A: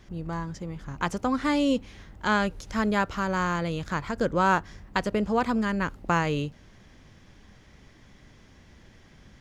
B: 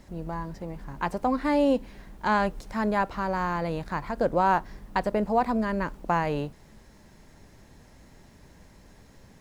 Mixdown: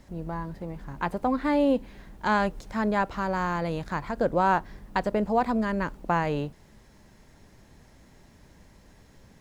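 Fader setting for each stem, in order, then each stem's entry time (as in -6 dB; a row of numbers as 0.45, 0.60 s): -12.5, -2.0 dB; 0.00, 0.00 s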